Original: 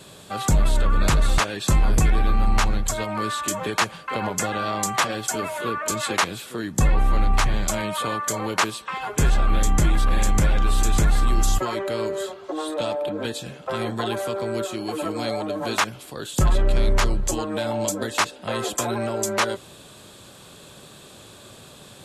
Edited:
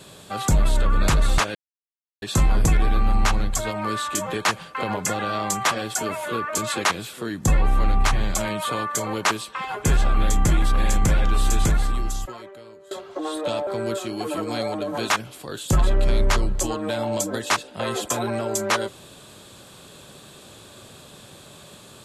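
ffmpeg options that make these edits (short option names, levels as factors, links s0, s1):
-filter_complex "[0:a]asplit=4[s0][s1][s2][s3];[s0]atrim=end=1.55,asetpts=PTS-STARTPTS,afade=t=out:st=1.546:d=0.004:c=hsin,apad=pad_dur=0.67[s4];[s1]atrim=start=1.55:end=12.24,asetpts=PTS-STARTPTS,afade=t=in:d=0.004:c=hsin,afade=t=out:st=9.4:d=1.29:c=qua:silence=0.0891251[s5];[s2]atrim=start=12.24:end=13.002,asetpts=PTS-STARTPTS,afade=t=in:d=0.004:c=hsin:silence=0.0891251[s6];[s3]atrim=start=14.348[s7];[s4][s5][s6]concat=n=3:v=0:a=1[s8];[s8][s7]acrossfade=d=0.004:c1=hsin:c2=hsin"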